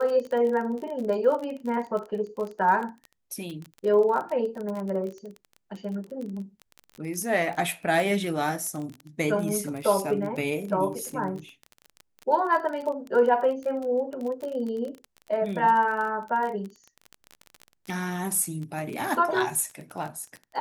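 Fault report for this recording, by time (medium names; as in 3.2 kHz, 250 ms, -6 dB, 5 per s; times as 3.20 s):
crackle 28 per s -31 dBFS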